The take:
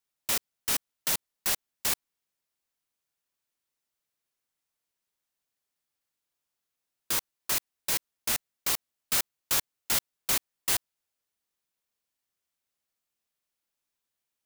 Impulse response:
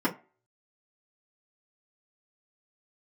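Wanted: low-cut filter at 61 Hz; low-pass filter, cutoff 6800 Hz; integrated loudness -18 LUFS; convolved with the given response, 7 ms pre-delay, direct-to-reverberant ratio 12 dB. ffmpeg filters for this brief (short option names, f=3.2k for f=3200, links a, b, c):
-filter_complex "[0:a]highpass=61,lowpass=6.8k,asplit=2[a][b];[1:a]atrim=start_sample=2205,adelay=7[c];[b][c]afir=irnorm=-1:irlink=0,volume=-23dB[d];[a][d]amix=inputs=2:normalize=0,volume=16dB"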